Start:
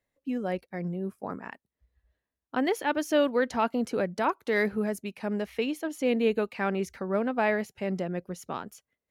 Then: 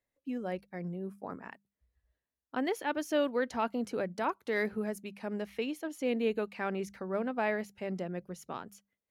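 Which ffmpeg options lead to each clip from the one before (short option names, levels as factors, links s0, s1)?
-af "bandreject=f=50:t=h:w=6,bandreject=f=100:t=h:w=6,bandreject=f=150:t=h:w=6,bandreject=f=200:t=h:w=6,volume=0.531"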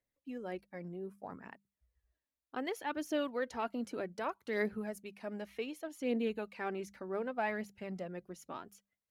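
-af "aphaser=in_gain=1:out_gain=1:delay=3.7:decay=0.41:speed=0.65:type=triangular,volume=0.562"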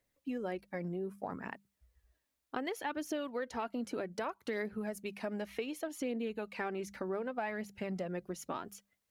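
-af "acompressor=threshold=0.00708:ratio=6,volume=2.66"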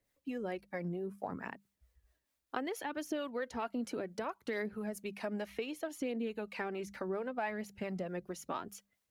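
-filter_complex "[0:a]acrossover=split=440[s0][s1];[s0]aeval=exprs='val(0)*(1-0.5/2+0.5/2*cos(2*PI*4.5*n/s))':c=same[s2];[s1]aeval=exprs='val(0)*(1-0.5/2-0.5/2*cos(2*PI*4.5*n/s))':c=same[s3];[s2][s3]amix=inputs=2:normalize=0,volume=1.26"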